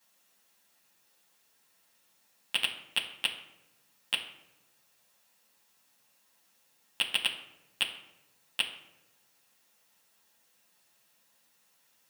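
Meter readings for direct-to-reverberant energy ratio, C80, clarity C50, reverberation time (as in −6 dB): −8.0 dB, 11.0 dB, 8.5 dB, 0.95 s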